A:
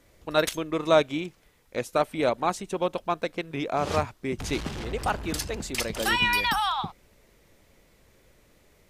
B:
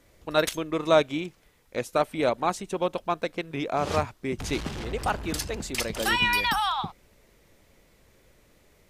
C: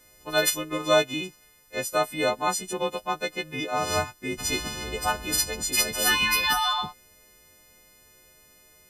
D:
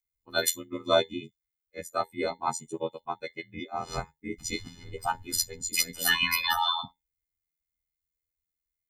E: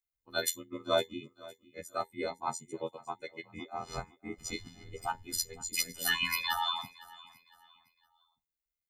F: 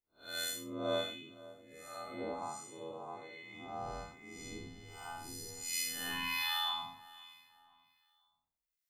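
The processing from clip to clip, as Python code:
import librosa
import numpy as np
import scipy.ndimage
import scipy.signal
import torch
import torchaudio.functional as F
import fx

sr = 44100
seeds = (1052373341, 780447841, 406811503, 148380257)

y1 = x
y2 = fx.freq_snap(y1, sr, grid_st=3)
y2 = y2 * librosa.db_to_amplitude(-1.5)
y3 = fx.bin_expand(y2, sr, power=2.0)
y3 = fx.comb_fb(y3, sr, f0_hz=110.0, decay_s=0.16, harmonics='all', damping=0.0, mix_pct=40)
y3 = y3 * np.sin(2.0 * np.pi * 42.0 * np.arange(len(y3)) / sr)
y3 = y3 * librosa.db_to_amplitude(5.0)
y4 = fx.echo_feedback(y3, sr, ms=510, feedback_pct=34, wet_db=-20.5)
y4 = y4 * librosa.db_to_amplitude(-5.5)
y5 = fx.spec_blur(y4, sr, span_ms=191.0)
y5 = fx.harmonic_tremolo(y5, sr, hz=1.3, depth_pct=70, crossover_hz=1300.0)
y5 = fx.doubler(y5, sr, ms=19.0, db=-5.0)
y5 = y5 * librosa.db_to_amplitude(2.0)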